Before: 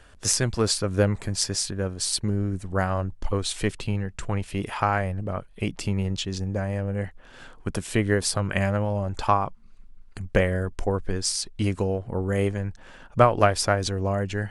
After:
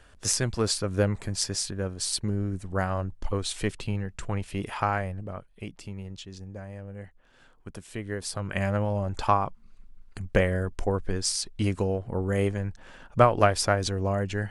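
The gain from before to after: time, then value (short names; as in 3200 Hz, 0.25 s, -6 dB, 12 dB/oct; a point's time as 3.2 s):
4.89 s -3 dB
5.83 s -12.5 dB
8.02 s -12.5 dB
8.77 s -1.5 dB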